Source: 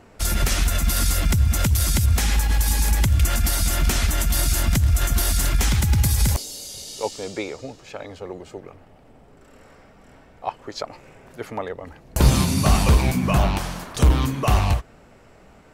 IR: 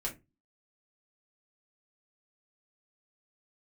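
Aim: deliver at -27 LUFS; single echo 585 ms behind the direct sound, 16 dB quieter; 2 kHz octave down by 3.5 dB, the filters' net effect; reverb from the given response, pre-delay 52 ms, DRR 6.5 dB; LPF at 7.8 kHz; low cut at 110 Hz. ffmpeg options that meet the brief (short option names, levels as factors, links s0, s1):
-filter_complex "[0:a]highpass=110,lowpass=7800,equalizer=f=2000:t=o:g=-4.5,aecho=1:1:585:0.158,asplit=2[s0][s1];[1:a]atrim=start_sample=2205,adelay=52[s2];[s1][s2]afir=irnorm=-1:irlink=0,volume=0.376[s3];[s0][s3]amix=inputs=2:normalize=0,volume=0.794"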